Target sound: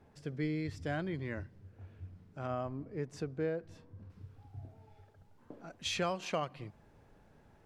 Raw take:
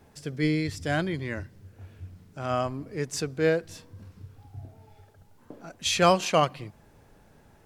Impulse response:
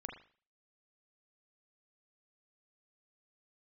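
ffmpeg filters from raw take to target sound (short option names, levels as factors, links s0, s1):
-af "asetnsamples=n=441:p=0,asendcmd='2.47 lowpass f 1000;4.1 lowpass f 3400',lowpass=f=2100:p=1,acompressor=threshold=0.0501:ratio=4,volume=0.531"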